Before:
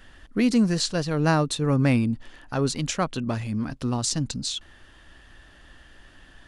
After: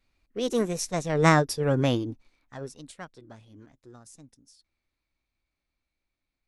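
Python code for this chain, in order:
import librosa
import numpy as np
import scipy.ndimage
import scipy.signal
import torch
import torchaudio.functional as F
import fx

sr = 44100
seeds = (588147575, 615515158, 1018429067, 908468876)

y = fx.doppler_pass(x, sr, speed_mps=6, closest_m=2.8, pass_at_s=1.31)
y = fx.formant_shift(y, sr, semitones=5)
y = fx.upward_expand(y, sr, threshold_db=-52.0, expansion=1.5)
y = y * 10.0 ** (2.5 / 20.0)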